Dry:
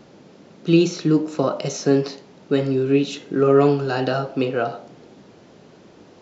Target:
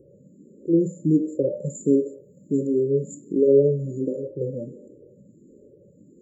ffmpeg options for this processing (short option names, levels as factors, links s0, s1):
-filter_complex "[0:a]asettb=1/sr,asplit=3[s0][s1][s2];[s0]atrim=end=1.754[s3];[s1]atrim=start=1.75:end=3.33,asetpts=PTS-STARTPTS,afade=t=in:d=0.004:c=qsin,afade=t=out:st=1.576:d=0.004:c=qsin,highshelf=f=4500:g=8.5[s4];[s2]atrim=start=3.326[s5];[s3][s4]acrossfade=d=0.004:c1=hsin:c2=qsin[s6];[s6][s5]acrossfade=d=0.004:c1=qsin:c2=hsin,afftfilt=real='re*(1-between(b*sr/4096,600,6800))':imag='im*(1-between(b*sr/4096,600,6800))':win_size=4096:overlap=0.75,asplit=2[s7][s8];[s8]afreqshift=1.4[s9];[s7][s9]amix=inputs=2:normalize=1"